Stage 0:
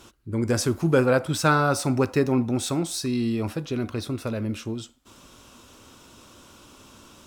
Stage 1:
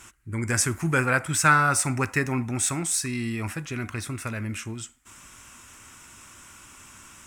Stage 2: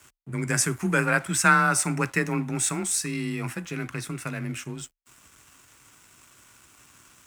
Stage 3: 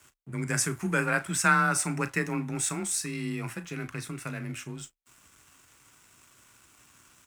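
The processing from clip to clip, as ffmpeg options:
-af "equalizer=f=250:t=o:w=1:g=-4,equalizer=f=500:t=o:w=1:g=-10,equalizer=f=2k:t=o:w=1:g=12,equalizer=f=4k:t=o:w=1:g=-10,equalizer=f=8k:t=o:w=1:g=11"
-af "aeval=exprs='sgn(val(0))*max(abs(val(0))-0.00316,0)':c=same,afreqshift=27"
-filter_complex "[0:a]asplit=2[a][b];[b]adelay=35,volume=-13.5dB[c];[a][c]amix=inputs=2:normalize=0,volume=-4dB"

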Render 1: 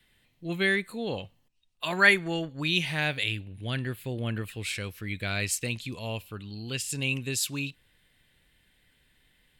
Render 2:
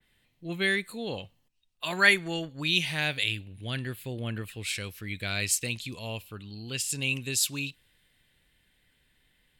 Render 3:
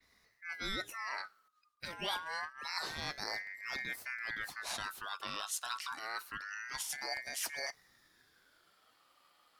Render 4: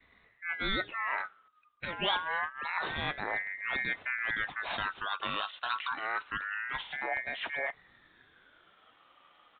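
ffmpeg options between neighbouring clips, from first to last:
-af "adynamicequalizer=threshold=0.0112:dfrequency=2500:dqfactor=0.7:tfrequency=2500:tqfactor=0.7:attack=5:release=100:ratio=0.375:range=3:mode=boostabove:tftype=highshelf,volume=-2.5dB"
-af "areverse,acompressor=threshold=-37dB:ratio=4,areverse,aeval=exprs='val(0)*sin(2*PI*1600*n/s+1600*0.25/0.27*sin(2*PI*0.27*n/s))':c=same,volume=2dB"
-af "aresample=8000,aresample=44100,volume=7.5dB"

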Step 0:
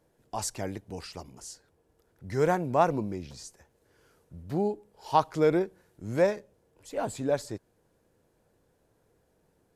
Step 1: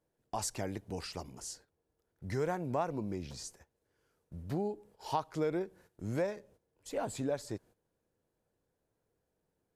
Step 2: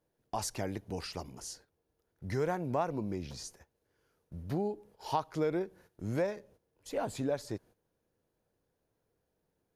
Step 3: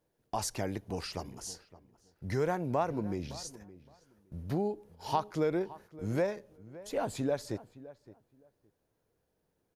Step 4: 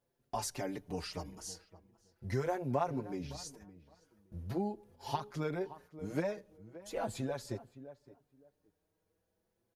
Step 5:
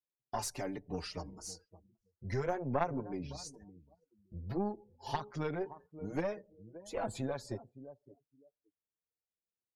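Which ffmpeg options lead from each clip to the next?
-af "agate=range=-13dB:threshold=-55dB:ratio=16:detection=peak,acompressor=threshold=-33dB:ratio=3"
-af "equalizer=f=7.8k:t=o:w=0.21:g=-7.5,volume=1.5dB"
-filter_complex "[0:a]asplit=2[a][b];[b]adelay=566,lowpass=f=1.8k:p=1,volume=-17.5dB,asplit=2[c][d];[d]adelay=566,lowpass=f=1.8k:p=1,volume=0.19[e];[a][c][e]amix=inputs=3:normalize=0,volume=1.5dB"
-filter_complex "[0:a]asplit=2[a][b];[b]adelay=5.4,afreqshift=0.4[c];[a][c]amix=inputs=2:normalize=1"
-af "afftdn=nr=26:nf=-56,aeval=exprs='0.106*(cos(1*acos(clip(val(0)/0.106,-1,1)))-cos(1*PI/2))+0.0376*(cos(2*acos(clip(val(0)/0.106,-1,1)))-cos(2*PI/2))':c=same"

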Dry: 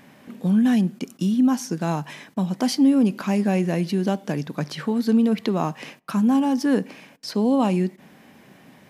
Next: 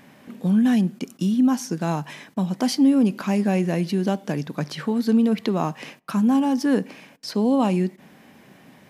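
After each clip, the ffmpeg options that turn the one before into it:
-af anull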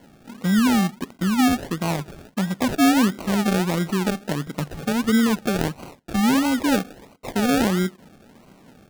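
-af "acrusher=samples=35:mix=1:aa=0.000001:lfo=1:lforange=21:lforate=1.5"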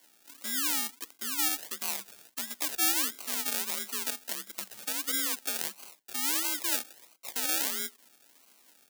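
-af "afreqshift=48,aderivative,volume=2dB"

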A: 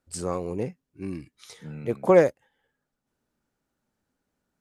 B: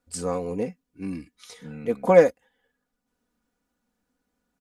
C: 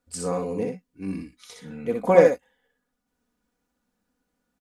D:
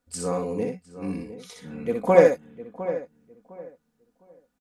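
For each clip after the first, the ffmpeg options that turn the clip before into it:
-af "aecho=1:1:4.1:0.67"
-af "aecho=1:1:62|78:0.631|0.15,volume=-1dB"
-filter_complex "[0:a]asplit=2[a][b];[b]adelay=707,lowpass=f=1.7k:p=1,volume=-13dB,asplit=2[c][d];[d]adelay=707,lowpass=f=1.7k:p=1,volume=0.24,asplit=2[e][f];[f]adelay=707,lowpass=f=1.7k:p=1,volume=0.24[g];[a][c][e][g]amix=inputs=4:normalize=0"

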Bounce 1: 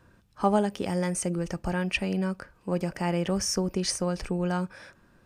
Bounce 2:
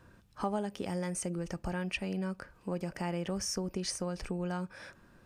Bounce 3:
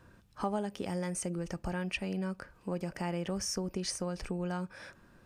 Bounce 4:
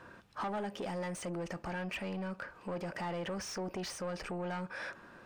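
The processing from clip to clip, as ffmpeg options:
-af "acompressor=threshold=-38dB:ratio=2"
-af anull
-filter_complex "[0:a]asoftclip=type=tanh:threshold=-35dB,asplit=2[a][b];[b]highpass=f=720:p=1,volume=22dB,asoftclip=type=tanh:threshold=-23dB[c];[a][c]amix=inputs=2:normalize=0,lowpass=f=1.8k:p=1,volume=-6dB,volume=-3.5dB"

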